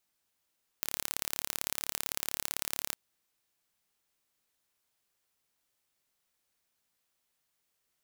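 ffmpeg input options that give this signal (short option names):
-f lavfi -i "aevalsrc='0.631*eq(mod(n,1235),0)*(0.5+0.5*eq(mod(n,2470),0))':d=2.11:s=44100"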